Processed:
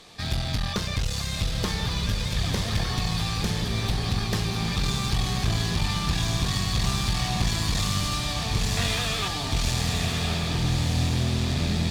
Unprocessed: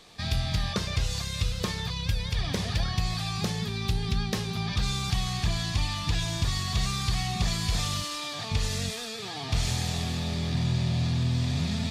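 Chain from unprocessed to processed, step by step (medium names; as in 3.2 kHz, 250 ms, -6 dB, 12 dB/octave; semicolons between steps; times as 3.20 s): 8.77–9.28 s: high-order bell 1.5 kHz +9 dB 2.8 oct; one-sided clip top -33 dBFS; echo that smears into a reverb 1220 ms, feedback 42%, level -3.5 dB; trim +3.5 dB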